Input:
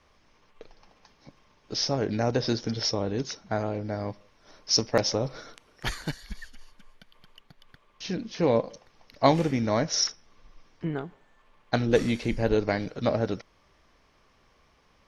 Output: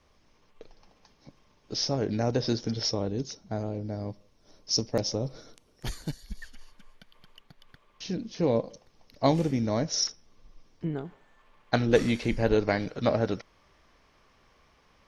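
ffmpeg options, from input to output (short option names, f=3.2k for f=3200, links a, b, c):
-af "asetnsamples=n=441:p=0,asendcmd='3.08 equalizer g -12.5;6.42 equalizer g -1;8.04 equalizer g -8;11.05 equalizer g 1',equalizer=f=1.6k:t=o:w=2.5:g=-5"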